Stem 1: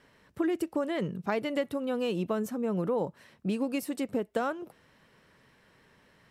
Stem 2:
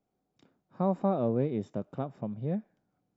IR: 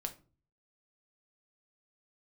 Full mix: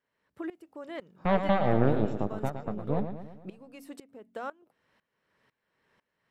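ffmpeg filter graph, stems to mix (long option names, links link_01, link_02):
-filter_complex "[0:a]lowshelf=frequency=310:gain=-8,bandreject=frequency=45.85:width_type=h:width=4,bandreject=frequency=91.7:width_type=h:width=4,bandreject=frequency=137.55:width_type=h:width=4,bandreject=frequency=183.4:width_type=h:width=4,bandreject=frequency=229.25:width_type=h:width=4,bandreject=frequency=275.1:width_type=h:width=4,aeval=exprs='val(0)*pow(10,-19*if(lt(mod(-2*n/s,1),2*abs(-2)/1000),1-mod(-2*n/s,1)/(2*abs(-2)/1000),(mod(-2*n/s,1)-2*abs(-2)/1000)/(1-2*abs(-2)/1000))/20)':channel_layout=same,volume=-2.5dB[link_01];[1:a]highpass=120,aemphasis=mode=production:type=cd,aeval=exprs='0.168*(cos(1*acos(clip(val(0)/0.168,-1,1)))-cos(1*PI/2))+0.0376*(cos(6*acos(clip(val(0)/0.168,-1,1)))-cos(6*PI/2))+0.00596*(cos(7*acos(clip(val(0)/0.168,-1,1)))-cos(7*PI/2))':channel_layout=same,adelay=450,volume=2dB,asplit=2[link_02][link_03];[link_03]volume=-8.5dB,aecho=0:1:113|226|339|452|565|678|791|904:1|0.54|0.292|0.157|0.085|0.0459|0.0248|0.0134[link_04];[link_01][link_02][link_04]amix=inputs=3:normalize=0,highshelf=frequency=4100:gain=-7.5"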